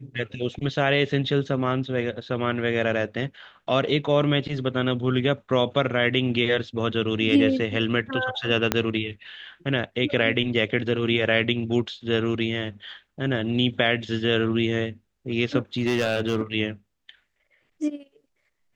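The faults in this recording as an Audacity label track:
8.720000	8.720000	click −5 dBFS
15.780000	16.410000	clipping −17.5 dBFS

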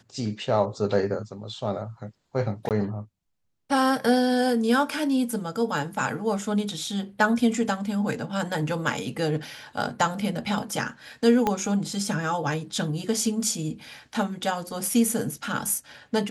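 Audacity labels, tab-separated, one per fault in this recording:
2.690000	2.710000	drop-out 18 ms
11.470000	11.470000	click −10 dBFS

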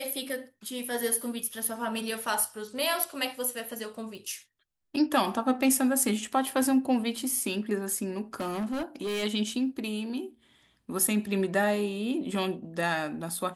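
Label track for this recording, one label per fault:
4.150000	4.150000	click
8.340000	9.240000	clipping −28 dBFS

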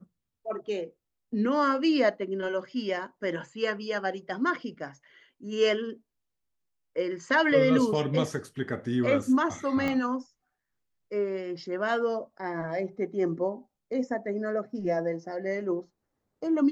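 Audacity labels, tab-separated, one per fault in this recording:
9.880000	9.880000	click −17 dBFS

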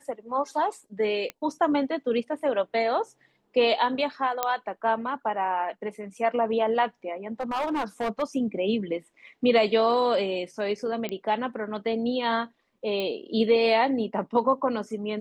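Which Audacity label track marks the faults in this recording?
1.300000	1.300000	click −18 dBFS
4.430000	4.430000	click −9 dBFS
7.400000	8.230000	clipping −23.5 dBFS
11.090000	11.090000	click −17 dBFS
13.000000	13.000000	click −18 dBFS

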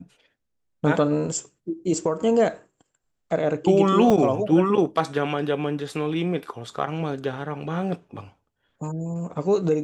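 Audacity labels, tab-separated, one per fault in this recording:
4.100000	4.100000	drop-out 3.1 ms

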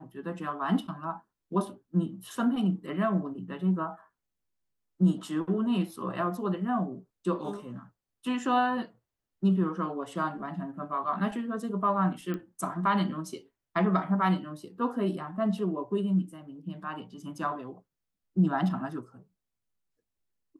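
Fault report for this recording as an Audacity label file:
12.340000	12.340000	click −23 dBFS

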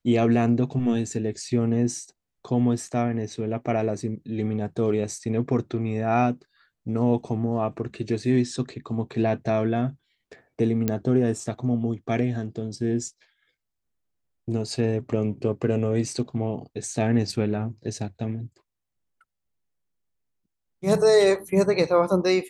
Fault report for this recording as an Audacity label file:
10.880000	10.880000	click −10 dBFS

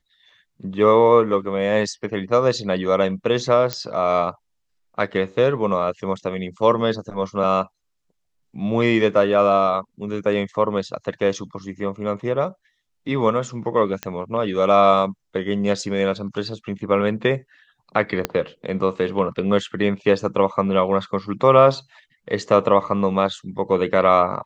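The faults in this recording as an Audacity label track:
3.730000	3.730000	click −7 dBFS
14.030000	14.030000	click −10 dBFS
18.250000	18.250000	click −6 dBFS

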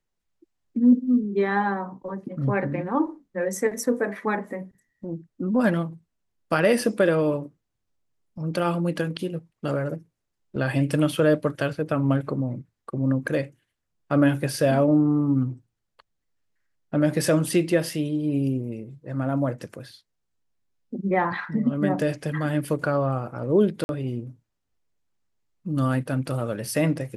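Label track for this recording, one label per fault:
23.840000	23.890000	drop-out 51 ms

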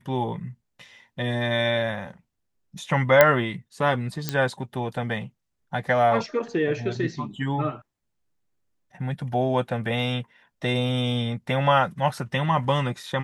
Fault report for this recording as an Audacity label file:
3.210000	3.210000	click −1 dBFS
4.290000	4.290000	click −9 dBFS

